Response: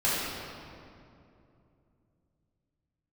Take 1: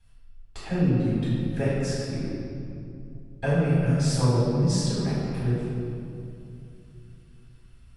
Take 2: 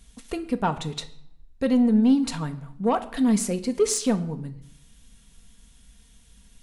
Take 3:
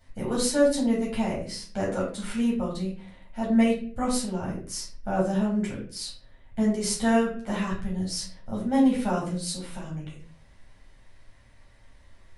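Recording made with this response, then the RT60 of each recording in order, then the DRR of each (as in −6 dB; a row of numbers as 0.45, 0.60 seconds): 1; 2.7, 0.75, 0.45 seconds; −9.5, 6.5, −6.0 decibels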